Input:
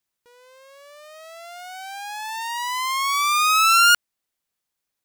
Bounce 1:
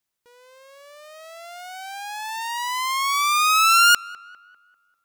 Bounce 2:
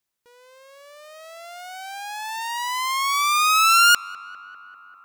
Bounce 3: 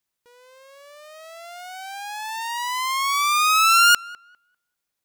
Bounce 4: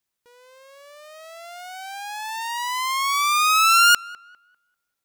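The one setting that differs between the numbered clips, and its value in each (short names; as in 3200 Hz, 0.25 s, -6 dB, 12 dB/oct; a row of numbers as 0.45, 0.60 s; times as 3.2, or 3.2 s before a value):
tape echo, feedback: 52, 89, 21, 32%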